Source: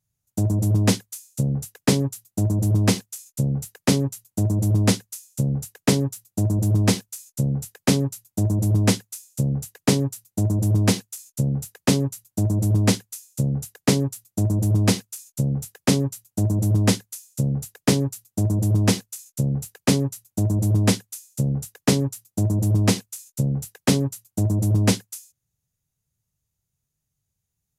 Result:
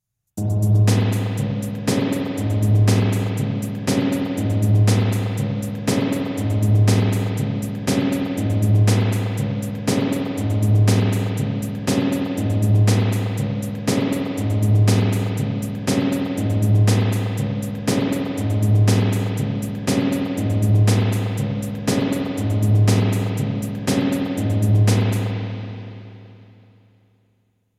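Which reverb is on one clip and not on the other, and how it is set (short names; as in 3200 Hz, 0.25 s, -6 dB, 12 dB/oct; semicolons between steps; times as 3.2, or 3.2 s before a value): spring tank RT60 3.1 s, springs 34/47 ms, chirp 80 ms, DRR -5 dB; gain -3 dB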